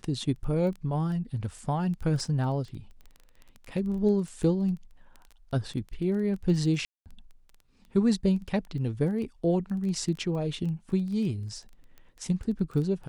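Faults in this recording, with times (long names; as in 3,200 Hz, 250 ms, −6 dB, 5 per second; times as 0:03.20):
surface crackle 13 per second −35 dBFS
0:06.85–0:07.06: drop-out 208 ms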